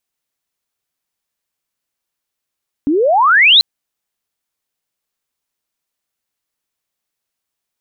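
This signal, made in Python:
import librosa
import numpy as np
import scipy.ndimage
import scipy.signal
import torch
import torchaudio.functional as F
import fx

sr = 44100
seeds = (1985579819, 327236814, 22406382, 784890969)

y = fx.chirp(sr, length_s=0.74, from_hz=270.0, to_hz=4200.0, law='logarithmic', from_db=-11.0, to_db=-4.0)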